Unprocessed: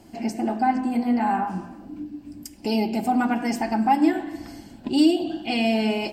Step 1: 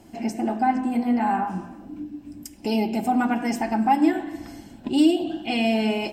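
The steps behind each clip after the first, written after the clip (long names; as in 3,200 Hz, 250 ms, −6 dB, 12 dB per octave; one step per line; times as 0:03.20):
notch filter 4,600 Hz, Q 8.9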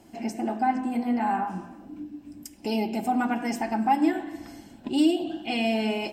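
low-shelf EQ 160 Hz −5 dB
level −2.5 dB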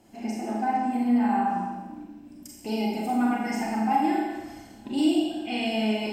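four-comb reverb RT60 1.1 s, combs from 29 ms, DRR −3 dB
level −5 dB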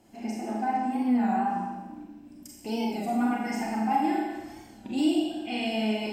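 wow of a warped record 33 1/3 rpm, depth 100 cents
level −2 dB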